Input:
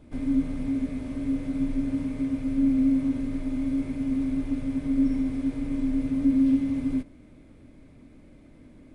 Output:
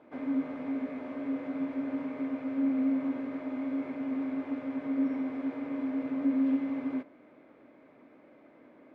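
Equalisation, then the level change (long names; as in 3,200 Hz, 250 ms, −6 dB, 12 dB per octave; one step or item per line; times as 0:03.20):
high-pass filter 530 Hz 12 dB per octave
low-pass filter 1,600 Hz 12 dB per octave
+6.0 dB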